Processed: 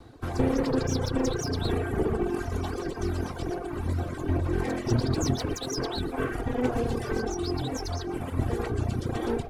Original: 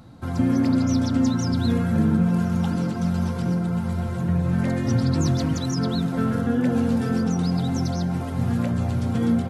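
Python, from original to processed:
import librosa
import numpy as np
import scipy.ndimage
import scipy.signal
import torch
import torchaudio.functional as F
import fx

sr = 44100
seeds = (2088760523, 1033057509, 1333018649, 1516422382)

y = fx.lower_of_two(x, sr, delay_ms=2.6)
y = y + 10.0 ** (-12.0 / 20.0) * np.pad(y, (int(117 * sr / 1000.0), 0))[:len(y)]
y = fx.dereverb_blind(y, sr, rt60_s=1.6)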